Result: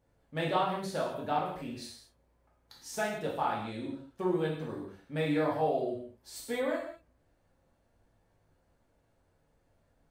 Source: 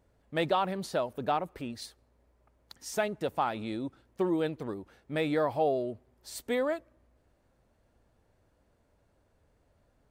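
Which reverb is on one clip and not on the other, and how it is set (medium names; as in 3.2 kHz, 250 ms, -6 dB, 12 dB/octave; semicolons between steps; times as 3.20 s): gated-style reverb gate 250 ms falling, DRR -4.5 dB; trim -7 dB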